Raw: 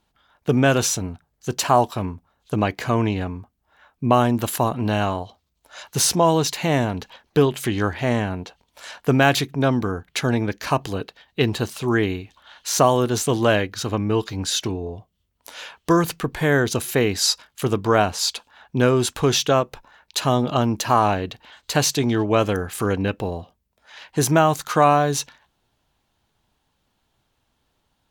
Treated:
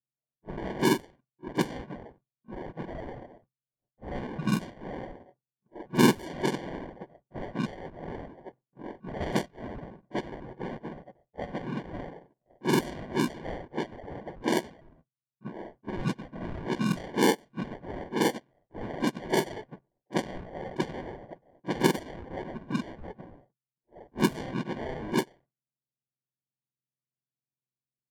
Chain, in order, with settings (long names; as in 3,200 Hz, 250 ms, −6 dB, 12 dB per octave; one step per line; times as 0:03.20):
frequency axis turned over on the octave scale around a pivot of 1,500 Hz
downward expander −40 dBFS
drawn EQ curve 380 Hz 0 dB, 4,700 Hz −21 dB, 11,000 Hz −8 dB
in parallel at +3 dB: downward compressor 4 to 1, threshold −33 dBFS, peak gain reduction 20.5 dB
on the sum: sample-rate reduction 1,300 Hz, jitter 0%
low-pass that shuts in the quiet parts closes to 890 Hz, open at −12.5 dBFS
on a send: backwards echo 38 ms −19.5 dB
on the sum: level −8.5 dB